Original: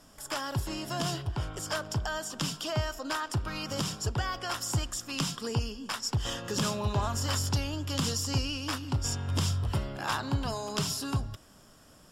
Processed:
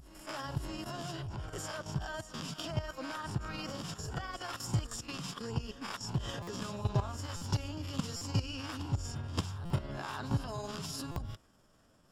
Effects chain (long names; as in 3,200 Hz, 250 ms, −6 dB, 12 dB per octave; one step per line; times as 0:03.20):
peak hold with a rise ahead of every peak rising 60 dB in 0.34 s
high-shelf EQ 3,400 Hz −5.5 dB
output level in coarse steps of 13 dB
granular cloud 100 ms, spray 14 ms, pitch spread up and down by 0 semitones
on a send: backwards echo 577 ms −14.5 dB
on the sum: buffer that repeats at 0:06.42/0:07.36/0:08.16/0:09.65/0:11.11, samples 256, times 8